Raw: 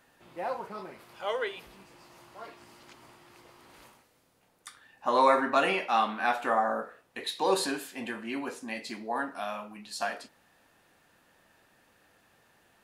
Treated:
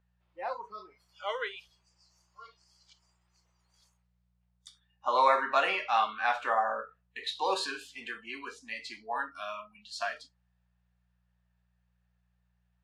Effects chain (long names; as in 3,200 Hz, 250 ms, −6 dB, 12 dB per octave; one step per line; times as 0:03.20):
noise reduction from a noise print of the clip's start 22 dB
hum with harmonics 60 Hz, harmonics 3, −56 dBFS −5 dB per octave
three-way crossover with the lows and the highs turned down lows −18 dB, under 500 Hz, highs −21 dB, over 7,100 Hz